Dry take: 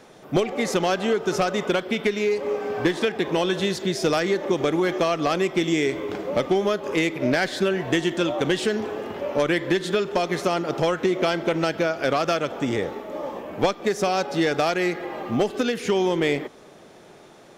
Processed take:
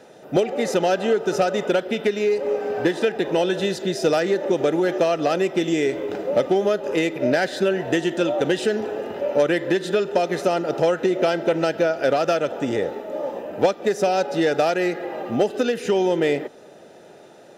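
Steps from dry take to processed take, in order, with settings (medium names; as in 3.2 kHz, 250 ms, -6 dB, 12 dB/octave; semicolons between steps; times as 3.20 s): peaking EQ 550 Hz +5 dB 0.83 oct; comb of notches 1.1 kHz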